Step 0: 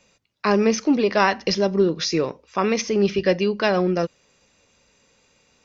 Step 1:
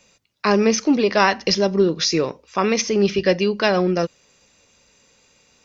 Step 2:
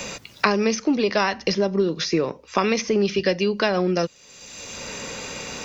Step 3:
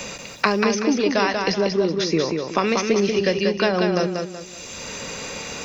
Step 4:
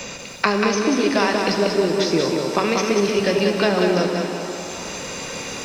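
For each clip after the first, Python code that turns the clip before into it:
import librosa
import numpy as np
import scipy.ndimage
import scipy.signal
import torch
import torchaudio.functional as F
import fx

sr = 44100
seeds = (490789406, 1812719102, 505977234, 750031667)

y1 = fx.high_shelf(x, sr, hz=4000.0, db=5.5)
y1 = y1 * librosa.db_to_amplitude(1.5)
y2 = fx.band_squash(y1, sr, depth_pct=100)
y2 = y2 * librosa.db_to_amplitude(-3.5)
y3 = fx.echo_feedback(y2, sr, ms=188, feedback_pct=35, wet_db=-4.5)
y4 = fx.rev_shimmer(y3, sr, seeds[0], rt60_s=3.6, semitones=7, shimmer_db=-8, drr_db=4.5)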